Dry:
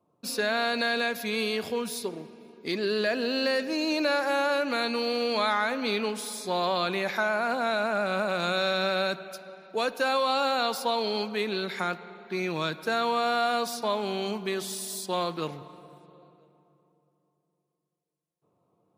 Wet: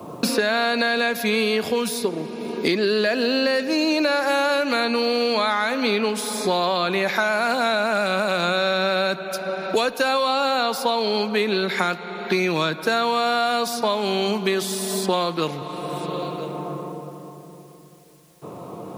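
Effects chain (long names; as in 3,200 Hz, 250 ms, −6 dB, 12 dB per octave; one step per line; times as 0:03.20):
multiband upward and downward compressor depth 100%
level +5.5 dB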